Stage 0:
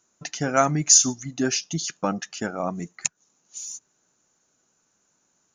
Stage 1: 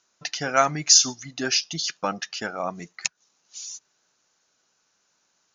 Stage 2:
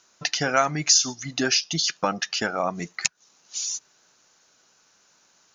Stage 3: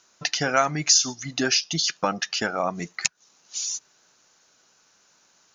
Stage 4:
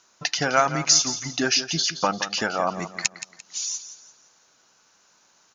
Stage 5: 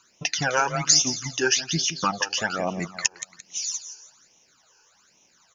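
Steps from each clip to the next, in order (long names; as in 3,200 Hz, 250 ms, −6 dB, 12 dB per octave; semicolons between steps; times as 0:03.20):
drawn EQ curve 280 Hz 0 dB, 490 Hz +5 dB, 5,000 Hz +14 dB, 8,600 Hz −6 dB; level −7 dB
downward compressor 2 to 1, threshold −33 dBFS, peak gain reduction 12 dB; level +8.5 dB
no processing that can be heard
parametric band 980 Hz +3 dB 0.77 octaves; repeating echo 172 ms, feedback 35%, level −12 dB
all-pass phaser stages 12, 1.2 Hz, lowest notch 200–1,500 Hz; level +2.5 dB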